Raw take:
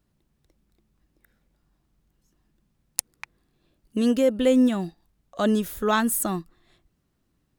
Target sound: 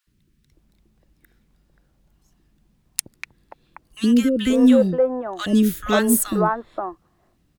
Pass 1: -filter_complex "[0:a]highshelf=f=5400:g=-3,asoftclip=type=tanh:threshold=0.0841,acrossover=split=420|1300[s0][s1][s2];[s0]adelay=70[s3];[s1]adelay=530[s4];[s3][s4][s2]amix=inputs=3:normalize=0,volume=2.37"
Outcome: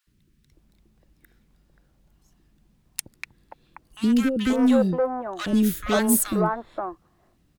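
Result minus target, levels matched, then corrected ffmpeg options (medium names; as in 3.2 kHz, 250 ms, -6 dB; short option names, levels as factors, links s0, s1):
saturation: distortion +12 dB
-filter_complex "[0:a]highshelf=f=5400:g=-3,asoftclip=type=tanh:threshold=0.266,acrossover=split=420|1300[s0][s1][s2];[s0]adelay=70[s3];[s1]adelay=530[s4];[s3][s4][s2]amix=inputs=3:normalize=0,volume=2.37"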